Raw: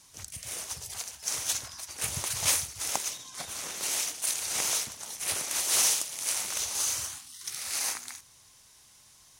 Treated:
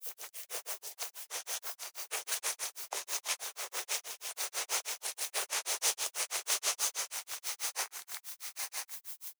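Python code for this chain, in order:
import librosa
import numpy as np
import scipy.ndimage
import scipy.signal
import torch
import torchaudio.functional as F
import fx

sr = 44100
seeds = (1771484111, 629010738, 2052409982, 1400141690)

p1 = scipy.signal.sosfilt(scipy.signal.butter(12, 370.0, 'highpass', fs=sr, output='sos'), x)
p2 = fx.high_shelf(p1, sr, hz=3300.0, db=-7.5)
p3 = fx.echo_thinned(p2, sr, ms=855, feedback_pct=25, hz=800.0, wet_db=-4.5)
p4 = fx.quant_companded(p3, sr, bits=4)
p5 = p3 + F.gain(torch.from_numpy(p4), -5.0).numpy()
p6 = fx.dmg_noise_colour(p5, sr, seeds[0], colour='violet', level_db=-39.0)
y = fx.granulator(p6, sr, seeds[1], grain_ms=146.0, per_s=6.2, spray_ms=100.0, spread_st=0)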